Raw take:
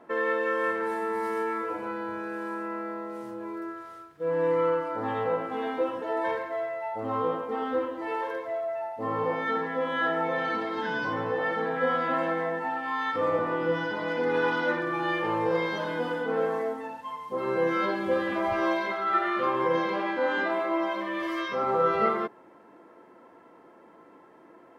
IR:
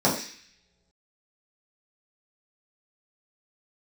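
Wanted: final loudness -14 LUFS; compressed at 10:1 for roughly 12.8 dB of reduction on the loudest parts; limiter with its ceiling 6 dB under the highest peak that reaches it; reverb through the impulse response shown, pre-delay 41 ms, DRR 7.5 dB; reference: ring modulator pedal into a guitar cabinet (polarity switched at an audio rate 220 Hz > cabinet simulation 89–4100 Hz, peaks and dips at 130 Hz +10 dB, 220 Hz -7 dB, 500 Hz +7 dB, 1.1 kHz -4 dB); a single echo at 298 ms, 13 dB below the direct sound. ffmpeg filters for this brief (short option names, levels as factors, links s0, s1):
-filter_complex "[0:a]acompressor=threshold=0.02:ratio=10,alimiter=level_in=2:limit=0.0631:level=0:latency=1,volume=0.501,aecho=1:1:298:0.224,asplit=2[s0][s1];[1:a]atrim=start_sample=2205,adelay=41[s2];[s1][s2]afir=irnorm=-1:irlink=0,volume=0.0631[s3];[s0][s3]amix=inputs=2:normalize=0,aeval=exprs='val(0)*sgn(sin(2*PI*220*n/s))':c=same,highpass=89,equalizer=f=130:t=q:w=4:g=10,equalizer=f=220:t=q:w=4:g=-7,equalizer=f=500:t=q:w=4:g=7,equalizer=f=1100:t=q:w=4:g=-4,lowpass=f=4100:w=0.5412,lowpass=f=4100:w=1.3066,volume=12.6"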